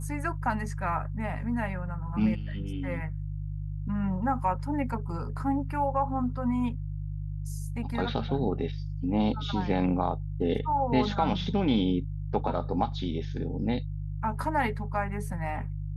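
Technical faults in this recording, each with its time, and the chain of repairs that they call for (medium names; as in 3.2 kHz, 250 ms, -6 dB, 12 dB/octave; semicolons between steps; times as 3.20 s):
hum 50 Hz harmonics 3 -34 dBFS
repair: de-hum 50 Hz, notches 3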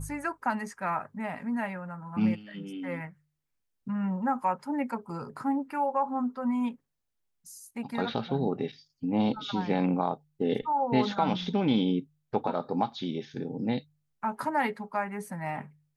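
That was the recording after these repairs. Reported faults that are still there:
nothing left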